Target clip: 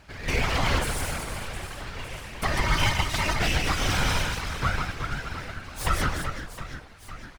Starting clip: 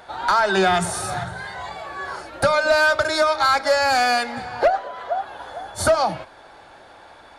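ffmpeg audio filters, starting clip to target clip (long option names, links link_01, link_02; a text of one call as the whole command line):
ffmpeg -i in.wav -af "aecho=1:1:150|375|712.5|1219|1978:0.631|0.398|0.251|0.158|0.1,aeval=exprs='abs(val(0))':channel_layout=same,afftfilt=real='hypot(re,im)*cos(2*PI*random(0))':imag='hypot(re,im)*sin(2*PI*random(1))':win_size=512:overlap=0.75" out.wav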